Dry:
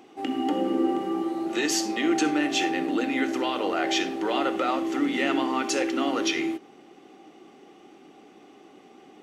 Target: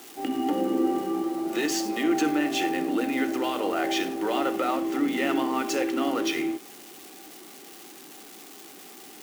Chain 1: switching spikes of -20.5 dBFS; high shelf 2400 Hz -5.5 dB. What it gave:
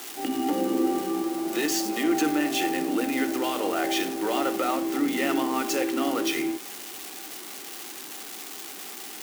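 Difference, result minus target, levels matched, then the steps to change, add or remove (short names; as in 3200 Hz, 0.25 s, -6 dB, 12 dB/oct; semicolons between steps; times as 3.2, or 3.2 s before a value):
switching spikes: distortion +8 dB
change: switching spikes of -28.5 dBFS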